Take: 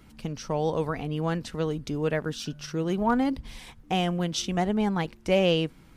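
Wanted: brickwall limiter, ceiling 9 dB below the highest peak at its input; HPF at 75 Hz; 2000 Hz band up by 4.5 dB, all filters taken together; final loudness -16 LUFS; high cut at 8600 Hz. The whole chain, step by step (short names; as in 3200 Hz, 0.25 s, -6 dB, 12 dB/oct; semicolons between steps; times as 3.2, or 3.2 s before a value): HPF 75 Hz; LPF 8600 Hz; bell 2000 Hz +6 dB; gain +13.5 dB; limiter -5 dBFS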